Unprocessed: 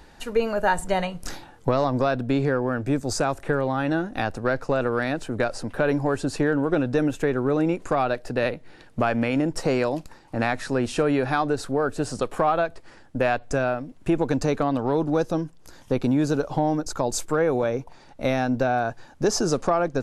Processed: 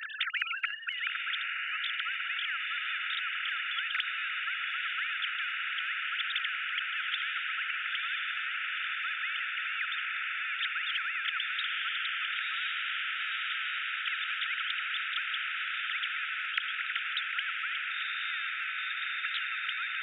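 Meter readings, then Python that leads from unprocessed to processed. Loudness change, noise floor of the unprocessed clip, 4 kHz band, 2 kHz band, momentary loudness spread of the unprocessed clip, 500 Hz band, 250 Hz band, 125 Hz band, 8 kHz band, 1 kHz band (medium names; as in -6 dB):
-7.0 dB, -50 dBFS, +6.0 dB, +2.5 dB, 6 LU, under -40 dB, under -40 dB, under -40 dB, under -40 dB, -12.0 dB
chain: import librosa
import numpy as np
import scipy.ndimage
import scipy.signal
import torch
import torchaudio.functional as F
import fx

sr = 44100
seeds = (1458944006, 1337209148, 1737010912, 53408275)

y = fx.sine_speech(x, sr)
y = fx.brickwall_highpass(y, sr, low_hz=1300.0)
y = fx.echo_diffused(y, sr, ms=992, feedback_pct=78, wet_db=-11.5)
y = fx.spectral_comp(y, sr, ratio=10.0)
y = F.gain(torch.from_numpy(y), 1.5).numpy()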